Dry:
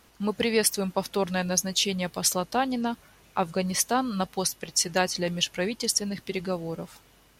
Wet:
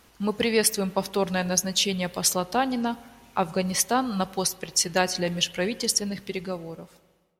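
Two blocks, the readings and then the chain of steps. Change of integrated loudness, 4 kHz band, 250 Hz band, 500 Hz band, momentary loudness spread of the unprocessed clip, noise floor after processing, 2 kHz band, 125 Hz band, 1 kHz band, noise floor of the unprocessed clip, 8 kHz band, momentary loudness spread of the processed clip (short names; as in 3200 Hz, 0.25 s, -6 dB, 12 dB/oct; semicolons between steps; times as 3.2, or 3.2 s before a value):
+1.5 dB, +1.5 dB, +1.5 dB, +1.5 dB, 9 LU, -61 dBFS, +1.5 dB, +1.0 dB, +1.5 dB, -58 dBFS, +1.5 dB, 10 LU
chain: ending faded out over 1.34 s; spring tank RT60 1.5 s, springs 41/56 ms, chirp 55 ms, DRR 17.5 dB; gain +1.5 dB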